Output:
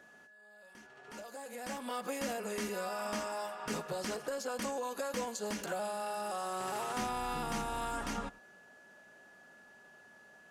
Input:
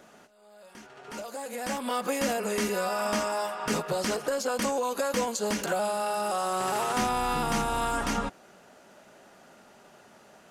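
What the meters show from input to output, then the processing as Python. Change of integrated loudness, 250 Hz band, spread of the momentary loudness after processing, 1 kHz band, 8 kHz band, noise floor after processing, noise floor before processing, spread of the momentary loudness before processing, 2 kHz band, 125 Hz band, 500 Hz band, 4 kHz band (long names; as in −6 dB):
−9.0 dB, −9.0 dB, 21 LU, −9.0 dB, −9.0 dB, −59 dBFS, −56 dBFS, 7 LU, −8.5 dB, −9.0 dB, −9.0 dB, −9.0 dB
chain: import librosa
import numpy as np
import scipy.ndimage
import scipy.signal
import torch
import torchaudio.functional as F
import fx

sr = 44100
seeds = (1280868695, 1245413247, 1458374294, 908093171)

y = x + 10.0 ** (-49.0 / 20.0) * np.sin(2.0 * np.pi * 1700.0 * np.arange(len(x)) / sr)
y = y + 10.0 ** (-22.0 / 20.0) * np.pad(y, (int(100 * sr / 1000.0), 0))[:len(y)]
y = F.gain(torch.from_numpy(y), -9.0).numpy()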